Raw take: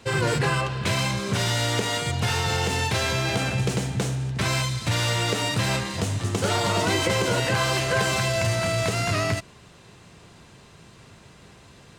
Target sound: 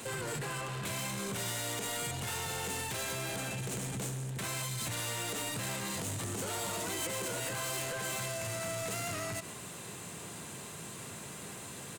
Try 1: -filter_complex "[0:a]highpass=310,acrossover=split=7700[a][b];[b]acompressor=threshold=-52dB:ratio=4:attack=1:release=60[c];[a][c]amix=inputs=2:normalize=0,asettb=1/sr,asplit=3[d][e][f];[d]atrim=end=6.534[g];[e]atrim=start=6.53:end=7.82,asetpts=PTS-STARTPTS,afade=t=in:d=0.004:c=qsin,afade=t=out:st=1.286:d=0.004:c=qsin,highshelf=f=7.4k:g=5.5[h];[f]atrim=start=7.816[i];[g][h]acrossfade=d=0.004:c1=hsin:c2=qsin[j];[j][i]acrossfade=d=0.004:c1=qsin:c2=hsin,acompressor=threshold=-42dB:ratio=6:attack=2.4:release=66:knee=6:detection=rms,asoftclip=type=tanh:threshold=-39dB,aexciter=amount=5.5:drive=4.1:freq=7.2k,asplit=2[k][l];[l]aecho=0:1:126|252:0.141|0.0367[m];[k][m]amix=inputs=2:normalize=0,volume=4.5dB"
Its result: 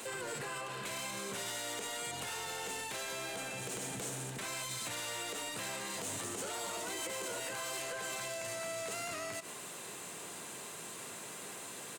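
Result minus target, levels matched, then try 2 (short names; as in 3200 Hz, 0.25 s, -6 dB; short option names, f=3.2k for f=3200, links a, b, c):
125 Hz band -8.5 dB; compressor: peak gain reduction +5 dB
-filter_complex "[0:a]highpass=130,acrossover=split=7700[a][b];[b]acompressor=threshold=-52dB:ratio=4:attack=1:release=60[c];[a][c]amix=inputs=2:normalize=0,asettb=1/sr,asplit=3[d][e][f];[d]atrim=end=6.534[g];[e]atrim=start=6.53:end=7.82,asetpts=PTS-STARTPTS,afade=t=in:d=0.004:c=qsin,afade=t=out:st=1.286:d=0.004:c=qsin,highshelf=f=7.4k:g=5.5[h];[f]atrim=start=7.816[i];[g][h]acrossfade=d=0.004:c1=hsin:c2=qsin[j];[j][i]acrossfade=d=0.004:c1=qsin:c2=hsin,acompressor=threshold=-35dB:ratio=6:attack=2.4:release=66:knee=6:detection=rms,asoftclip=type=tanh:threshold=-39dB,aexciter=amount=5.5:drive=4.1:freq=7.2k,asplit=2[k][l];[l]aecho=0:1:126|252:0.141|0.0367[m];[k][m]amix=inputs=2:normalize=0,volume=4.5dB"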